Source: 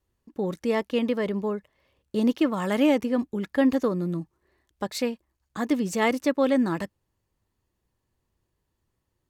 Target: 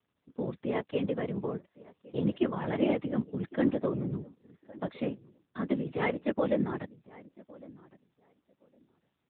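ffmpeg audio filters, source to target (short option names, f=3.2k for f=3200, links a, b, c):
-filter_complex "[0:a]asplit=2[a][b];[b]adelay=1110,lowpass=f=1.8k:p=1,volume=-21dB,asplit=2[c][d];[d]adelay=1110,lowpass=f=1.8k:p=1,volume=0.18[e];[a][c][e]amix=inputs=3:normalize=0,afftfilt=real='hypot(re,im)*cos(2*PI*random(0))':imag='hypot(re,im)*sin(2*PI*random(1))':win_size=512:overlap=0.75" -ar 8000 -c:a libopencore_amrnb -b:a 10200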